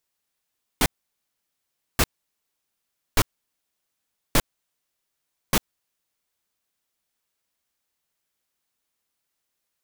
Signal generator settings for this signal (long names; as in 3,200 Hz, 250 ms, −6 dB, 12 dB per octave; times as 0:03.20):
noise bursts pink, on 0.05 s, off 1.13 s, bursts 5, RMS −17.5 dBFS